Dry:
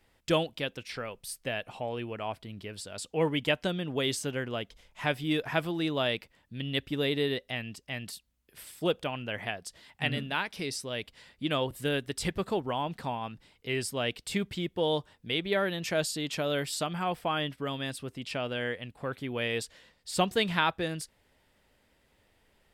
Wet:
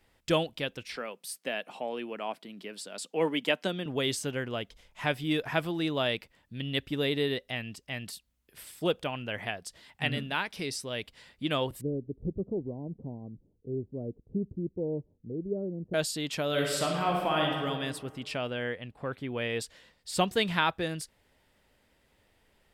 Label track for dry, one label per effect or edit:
0.960000	3.860000	steep high-pass 180 Hz
11.810000	15.940000	inverse Chebyshev low-pass stop band from 2000 Hz, stop band 70 dB
16.480000	17.640000	reverb throw, RT60 1.6 s, DRR -0.5 dB
18.500000	19.600000	high shelf 4300 Hz -9.5 dB

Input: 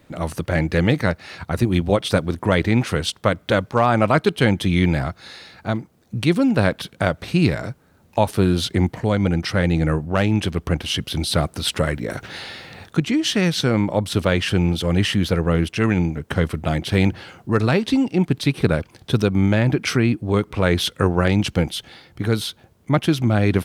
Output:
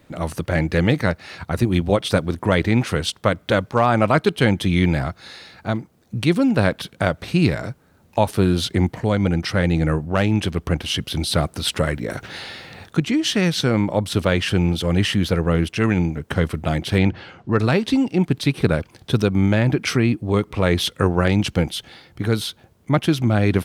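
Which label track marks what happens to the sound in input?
16.980000	17.590000	LPF 4300 Hz
19.910000	20.960000	notch 1500 Hz

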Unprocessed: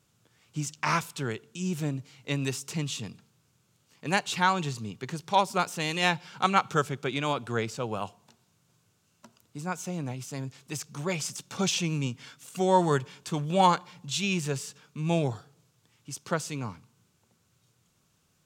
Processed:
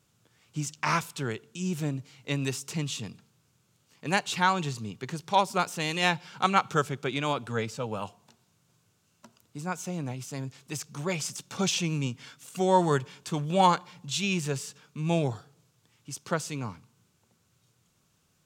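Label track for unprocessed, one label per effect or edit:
7.490000	8.050000	notch comb 360 Hz

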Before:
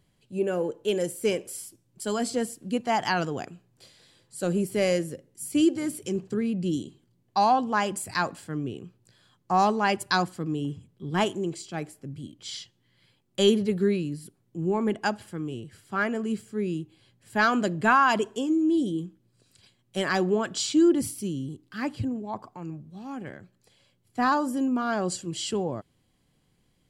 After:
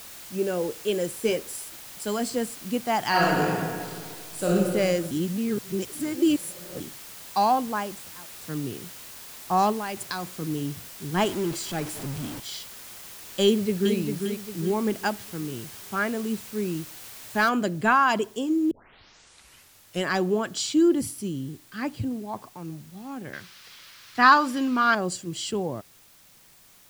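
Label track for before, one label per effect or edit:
1.230000	1.640000	doubler 13 ms -6.5 dB
3.080000	4.500000	reverb throw, RT60 2 s, DRR -6 dB
5.110000	6.800000	reverse
7.410000	8.410000	studio fade out
9.720000	10.420000	compressor, threshold -27 dBFS
11.170000	12.400000	zero-crossing step of -32 dBFS
13.450000	13.960000	echo throw 0.4 s, feedback 40%, level -5.5 dB
17.490000	17.490000	noise floor step -43 dB -55 dB
18.710000	18.710000	tape start 1.35 s
23.330000	24.950000	band shelf 2400 Hz +11.5 dB 2.7 oct

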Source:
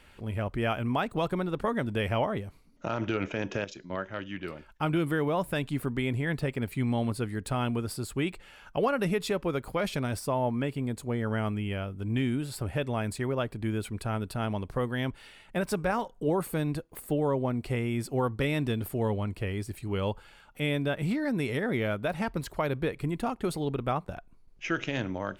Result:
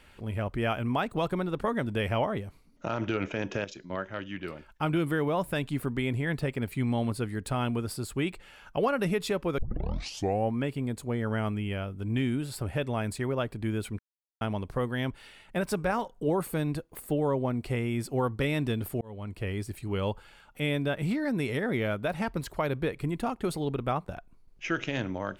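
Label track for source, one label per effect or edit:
9.580000	9.580000	tape start 0.96 s
13.990000	14.410000	mute
19.010000	19.490000	fade in

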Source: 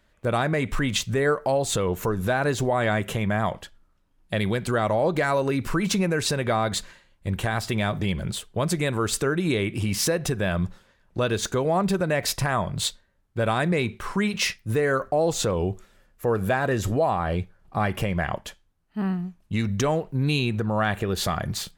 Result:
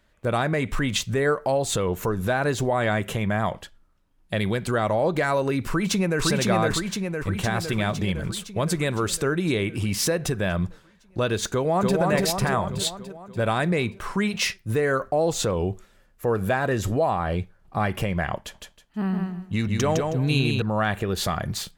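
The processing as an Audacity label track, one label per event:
5.680000	6.210000	echo throw 0.51 s, feedback 65%, level -1.5 dB
11.500000	12.000000	echo throw 0.29 s, feedback 60%, level -2.5 dB
18.380000	20.620000	feedback echo 0.159 s, feedback 22%, level -4 dB

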